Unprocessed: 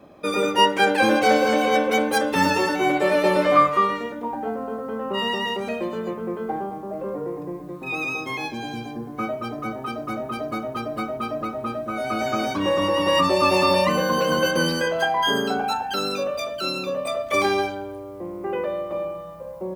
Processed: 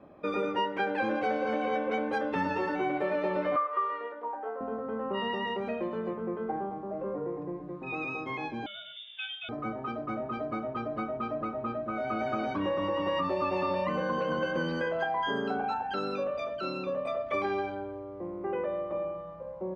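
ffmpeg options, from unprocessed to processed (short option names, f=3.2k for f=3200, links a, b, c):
-filter_complex "[0:a]asettb=1/sr,asplit=3[a][b][c];[a]atrim=end=3.564[d];[b]atrim=start=3.56:end=4.61,asetpts=PTS-STARTPTS,afade=t=in:d=0.004:c=qsin,afade=t=out:st=1.046:d=0.004:c=qsin,highpass=f=430:w=0.5412,highpass=f=430:w=1.3066,equalizer=f=730:t=q:w=4:g=-5,equalizer=f=1.2k:t=q:w=4:g=3,equalizer=f=2.4k:t=q:w=4:g=-6,equalizer=f=3.8k:t=q:w=4:g=-6,lowpass=f=4.8k:w=0.5412,lowpass=f=4.8k:w=1.3066[e];[c]atrim=start=4.606[f];[d][e]acrossfade=d=0.004:c1=hsin:c2=qsin[g];[g][f]acrossfade=d=0.004:c1=qsin:c2=hsin,asettb=1/sr,asplit=3[h][i][j];[h]atrim=end=8.664[k];[i]atrim=start=8.66:end=9.49,asetpts=PTS-STARTPTS,afade=t=in:d=0.004:c=qsin,afade=t=out:st=0.826:d=0.004:c=qsin,lowpass=f=3.2k:t=q:w=0.5098,lowpass=f=3.2k:t=q:w=0.6013,lowpass=f=3.2k:t=q:w=0.9,lowpass=f=3.2k:t=q:w=2.563,afreqshift=-3800[l];[j]atrim=start=9.486[m];[k][l]acrossfade=d=0.004:c1=hsin:c2=qsin[n];[n][m]acrossfade=d=0.004:c1=qsin:c2=hsin,lowpass=2.2k,acompressor=threshold=-22dB:ratio=4,volume=-5dB"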